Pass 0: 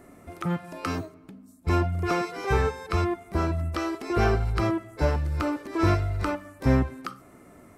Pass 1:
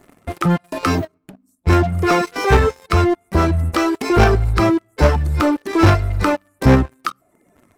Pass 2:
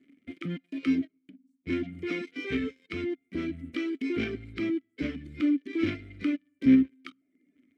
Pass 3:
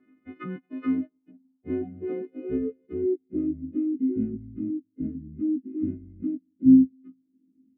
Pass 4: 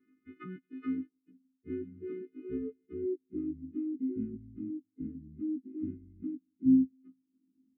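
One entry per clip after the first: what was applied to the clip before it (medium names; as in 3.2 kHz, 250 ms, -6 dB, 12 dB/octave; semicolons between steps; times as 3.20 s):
reverb removal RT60 0.96 s; in parallel at +1 dB: level held to a coarse grid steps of 21 dB; on the sum: waveshaping leveller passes 3
vowel filter i; trim -1.5 dB
partials quantised in pitch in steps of 3 st; low-pass sweep 1.2 kHz -> 230 Hz, 0.46–4.41 s; distance through air 130 m
brick-wall FIR band-stop 470–1100 Hz; trim -8.5 dB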